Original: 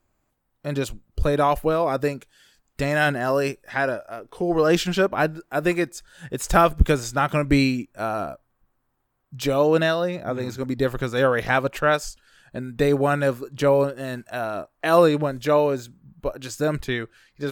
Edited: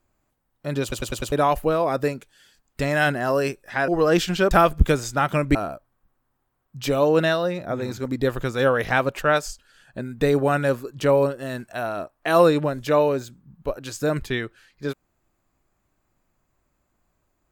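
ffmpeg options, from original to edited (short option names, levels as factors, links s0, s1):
-filter_complex "[0:a]asplit=9[s0][s1][s2][s3][s4][s5][s6][s7][s8];[s0]atrim=end=0.922[s9];[s1]atrim=start=0.818:end=0.922[s10];[s2]atrim=start=0.818:end=0.922[s11];[s3]atrim=start=0.818:end=0.922[s12];[s4]atrim=start=0.818:end=0.922[s13];[s5]atrim=start=1.318:end=3.882[s14];[s6]atrim=start=4.458:end=5.092[s15];[s7]atrim=start=6.508:end=7.552[s16];[s8]atrim=start=8.128[s17];[s9][s10]acrossfade=d=0.004:c1=hsin:c2=hsin[s18];[s18][s11]acrossfade=d=0.004:c1=hsin:c2=hsin[s19];[s19][s12]acrossfade=d=0.004:c1=hsin:c2=hsin[s20];[s20][s13]acrossfade=d=0.004:c1=hsin:c2=hsin[s21];[s21][s14]acrossfade=d=0.004:c1=hsin:c2=hsin[s22];[s22][s15]acrossfade=d=0.004:c1=hsin:c2=hsin[s23];[s23][s16]acrossfade=d=0.004:c1=hsin:c2=hsin[s24];[s24][s17]acrossfade=d=0.004:c1=hsin:c2=hsin"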